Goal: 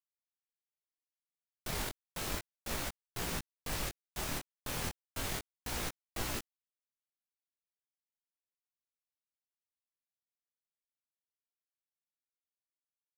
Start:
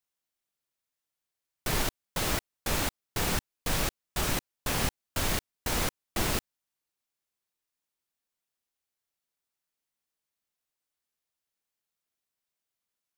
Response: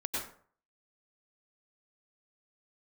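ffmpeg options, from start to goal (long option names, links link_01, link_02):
-af "aeval=exprs='val(0)*gte(abs(val(0)),0.0335)':channel_layout=same,flanger=delay=17:depth=7.4:speed=0.33,volume=-5dB"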